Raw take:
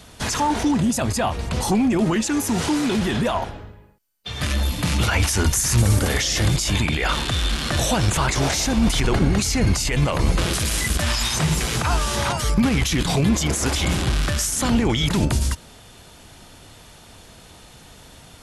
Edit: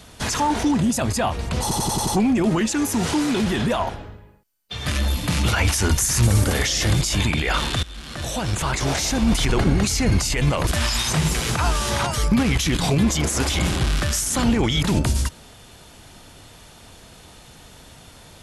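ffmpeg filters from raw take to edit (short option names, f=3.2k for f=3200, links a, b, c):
-filter_complex "[0:a]asplit=8[a][b][c][d][e][f][g][h];[a]atrim=end=1.712[i];[b]atrim=start=1.618:end=1.712[j];[c]atrim=start=1.618:end=1.712[k];[d]atrim=start=1.618:end=1.712[l];[e]atrim=start=1.618:end=1.712[m];[f]atrim=start=1.618:end=7.38,asetpts=PTS-STARTPTS,afade=t=out:st=5.758:d=0.004:c=hsin:silence=0.1[n];[g]atrim=start=7.38:end=10.222,asetpts=PTS-STARTPTS,afade=t=in:d=1.78:c=qsin:silence=0.1[o];[h]atrim=start=10.928[p];[i][j]acrossfade=d=0.004:c1=hsin:c2=hsin[q];[q][k]acrossfade=d=0.004:c1=hsin:c2=hsin[r];[r][l]acrossfade=d=0.004:c1=hsin:c2=hsin[s];[s][m]acrossfade=d=0.004:c1=hsin:c2=hsin[t];[n][o]concat=n=2:v=0:a=1[u];[t][u]acrossfade=d=0.004:c1=hsin:c2=hsin[v];[v][p]acrossfade=d=0.004:c1=hsin:c2=hsin"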